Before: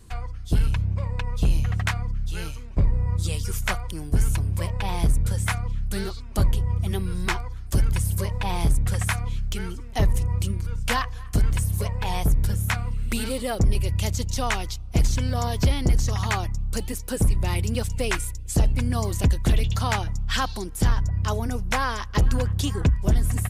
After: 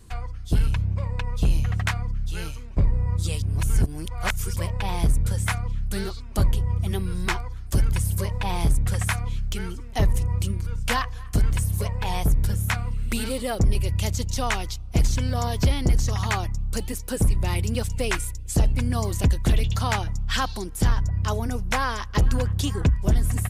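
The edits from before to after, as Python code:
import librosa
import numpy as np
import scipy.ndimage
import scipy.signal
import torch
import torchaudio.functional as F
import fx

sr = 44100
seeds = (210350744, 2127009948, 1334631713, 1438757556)

y = fx.edit(x, sr, fx.reverse_span(start_s=3.42, length_s=1.14), tone=tone)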